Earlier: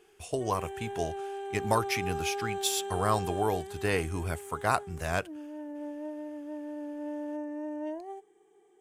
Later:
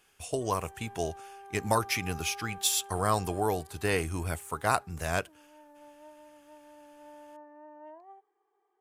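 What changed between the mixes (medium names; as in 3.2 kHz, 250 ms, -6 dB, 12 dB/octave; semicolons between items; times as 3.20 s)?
speech: add treble shelf 5.1 kHz +5 dB; background: add band-pass filter 1.1 kHz, Q 2.8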